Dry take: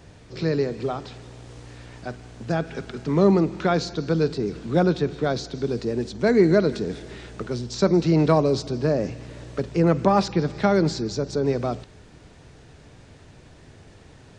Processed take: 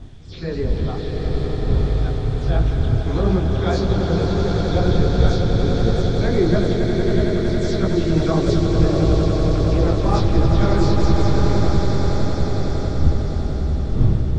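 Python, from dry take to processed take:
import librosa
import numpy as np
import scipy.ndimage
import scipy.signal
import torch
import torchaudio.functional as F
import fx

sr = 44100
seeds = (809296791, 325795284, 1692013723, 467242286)

p1 = fx.spec_delay(x, sr, highs='early', ms=119)
p2 = fx.dmg_wind(p1, sr, seeds[0], corner_hz=96.0, level_db=-20.0)
p3 = fx.peak_eq(p2, sr, hz=3400.0, db=11.0, octaves=0.22)
p4 = p3 + fx.echo_swell(p3, sr, ms=92, loudest=8, wet_db=-8.0, dry=0)
y = fx.detune_double(p4, sr, cents=53)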